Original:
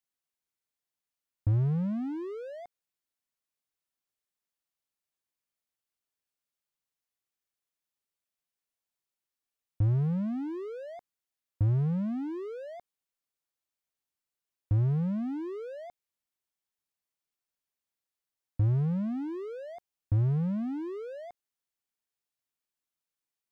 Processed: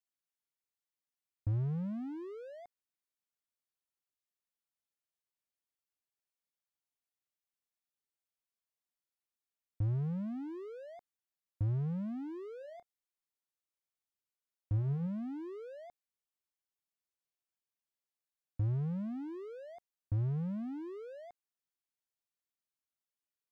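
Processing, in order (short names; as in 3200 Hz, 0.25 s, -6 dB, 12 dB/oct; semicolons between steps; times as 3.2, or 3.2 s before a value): 12.58–15.07 doubler 29 ms -13.5 dB; gain -7 dB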